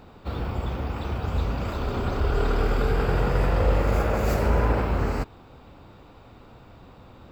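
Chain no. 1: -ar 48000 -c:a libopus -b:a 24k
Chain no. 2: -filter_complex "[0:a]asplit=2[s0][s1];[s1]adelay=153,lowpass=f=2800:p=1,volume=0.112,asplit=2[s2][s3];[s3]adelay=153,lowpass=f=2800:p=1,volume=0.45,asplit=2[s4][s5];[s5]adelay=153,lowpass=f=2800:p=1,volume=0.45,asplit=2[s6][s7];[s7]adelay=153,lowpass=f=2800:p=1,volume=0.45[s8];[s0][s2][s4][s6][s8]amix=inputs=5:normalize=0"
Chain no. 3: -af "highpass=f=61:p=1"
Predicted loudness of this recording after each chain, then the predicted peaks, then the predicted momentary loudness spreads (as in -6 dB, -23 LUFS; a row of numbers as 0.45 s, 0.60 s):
-26.0 LUFS, -26.0 LUFS, -27.0 LUFS; -10.0 dBFS, -9.0 dBFS, -11.0 dBFS; 9 LU, 8 LU, 8 LU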